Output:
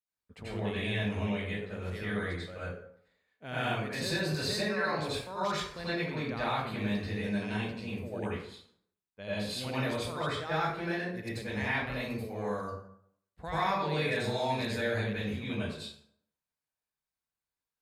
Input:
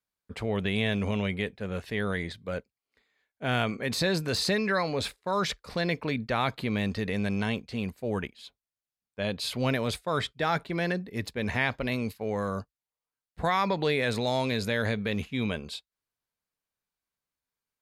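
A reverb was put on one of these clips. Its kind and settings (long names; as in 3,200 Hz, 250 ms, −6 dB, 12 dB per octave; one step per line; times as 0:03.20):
dense smooth reverb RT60 0.65 s, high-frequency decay 0.65×, pre-delay 75 ms, DRR −10 dB
level −14 dB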